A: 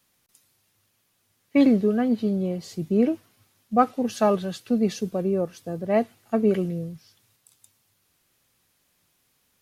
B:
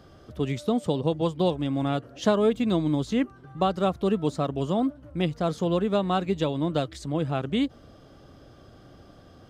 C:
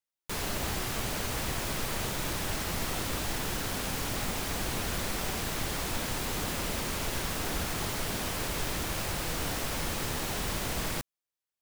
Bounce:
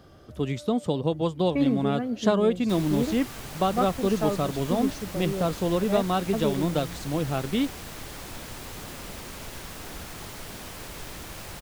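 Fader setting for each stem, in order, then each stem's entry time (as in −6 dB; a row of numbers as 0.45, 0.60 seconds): −7.5, −0.5, −6.5 decibels; 0.00, 0.00, 2.40 seconds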